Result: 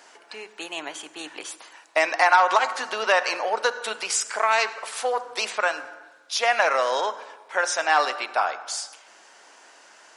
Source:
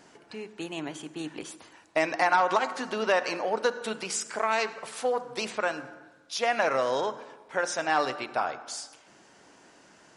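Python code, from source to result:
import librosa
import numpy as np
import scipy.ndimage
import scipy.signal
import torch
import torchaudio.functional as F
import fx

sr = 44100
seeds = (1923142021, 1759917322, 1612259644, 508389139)

y = scipy.signal.sosfilt(scipy.signal.butter(2, 660.0, 'highpass', fs=sr, output='sos'), x)
y = y * 10.0 ** (7.0 / 20.0)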